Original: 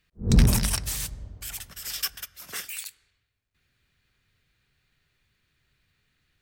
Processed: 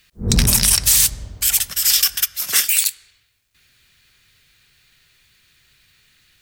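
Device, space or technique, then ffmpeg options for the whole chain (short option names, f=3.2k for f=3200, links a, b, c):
mastering chain: -af "equalizer=f=1.8k:t=o:w=2.2:g=-2.5,acompressor=threshold=-24dB:ratio=2,tiltshelf=f=1.3k:g=-7,alimiter=level_in=15dB:limit=-1dB:release=50:level=0:latency=1,volume=-1dB"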